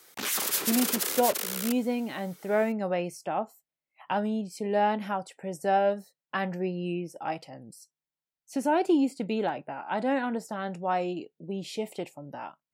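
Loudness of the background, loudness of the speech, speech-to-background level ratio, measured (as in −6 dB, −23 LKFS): −28.0 LKFS, −30.0 LKFS, −2.0 dB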